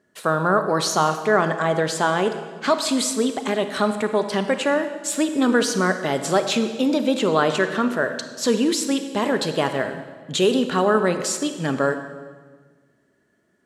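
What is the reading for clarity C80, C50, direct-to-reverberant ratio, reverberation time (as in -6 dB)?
10.5 dB, 9.0 dB, 8.0 dB, 1.5 s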